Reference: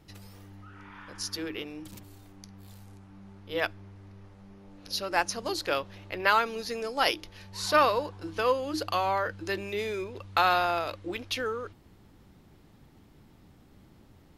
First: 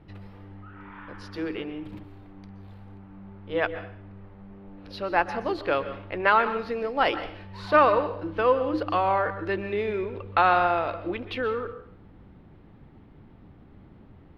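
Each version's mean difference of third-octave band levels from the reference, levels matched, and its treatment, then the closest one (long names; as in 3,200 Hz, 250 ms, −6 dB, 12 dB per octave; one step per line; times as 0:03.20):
5.5 dB: high-frequency loss of the air 470 metres
dense smooth reverb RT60 0.58 s, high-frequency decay 0.95×, pre-delay 110 ms, DRR 11.5 dB
level +6 dB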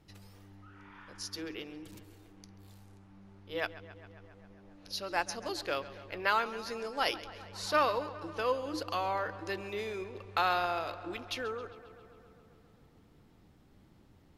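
2.5 dB: high-shelf EQ 12,000 Hz −5.5 dB
on a send: feedback echo with a low-pass in the loop 135 ms, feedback 77%, low-pass 4,500 Hz, level −16 dB
on the sum: level −5.5 dB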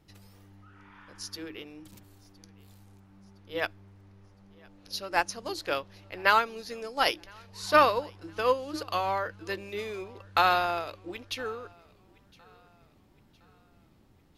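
4.0 dB: feedback echo with a high-pass in the loop 1,013 ms, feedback 45%, high-pass 180 Hz, level −22.5 dB
expander for the loud parts 1.5 to 1, over −35 dBFS
level +2.5 dB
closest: second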